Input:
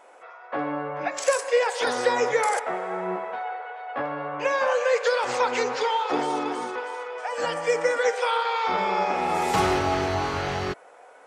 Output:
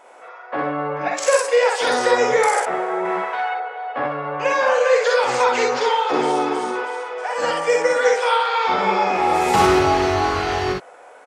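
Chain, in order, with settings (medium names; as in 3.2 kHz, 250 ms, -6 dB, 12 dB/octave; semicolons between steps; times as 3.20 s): 3.05–3.54 s: tilt shelf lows -8.5 dB, about 680 Hz; on a send: early reflections 46 ms -5 dB, 62 ms -3.5 dB; on the sum: trim +3.5 dB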